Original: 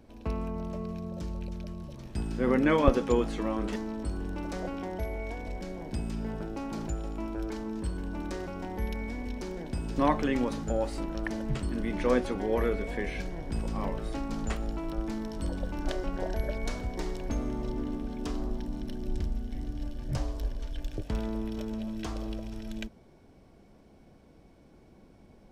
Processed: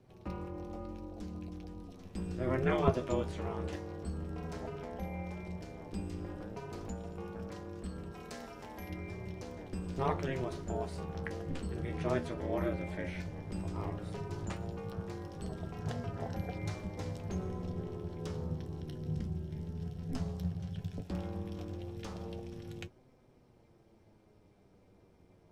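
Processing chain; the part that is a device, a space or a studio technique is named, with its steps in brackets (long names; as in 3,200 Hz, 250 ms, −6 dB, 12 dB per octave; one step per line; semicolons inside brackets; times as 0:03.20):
0:08.12–0:08.90: spectral tilt +2 dB per octave
alien voice (ring modulation 130 Hz; flanger 0.13 Hz, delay 7.7 ms, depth 5.6 ms, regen +55%)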